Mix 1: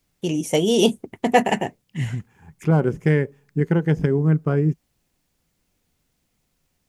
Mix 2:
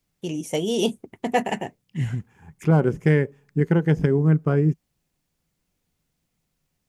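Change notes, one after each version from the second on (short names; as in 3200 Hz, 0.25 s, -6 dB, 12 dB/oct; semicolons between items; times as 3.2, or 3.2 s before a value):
first voice -5.5 dB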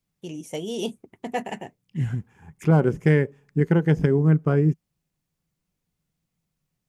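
first voice -6.5 dB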